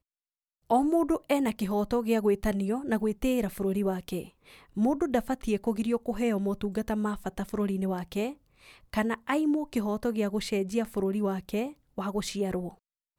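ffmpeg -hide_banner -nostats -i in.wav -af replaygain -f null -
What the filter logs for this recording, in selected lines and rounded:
track_gain = +9.7 dB
track_peak = 0.173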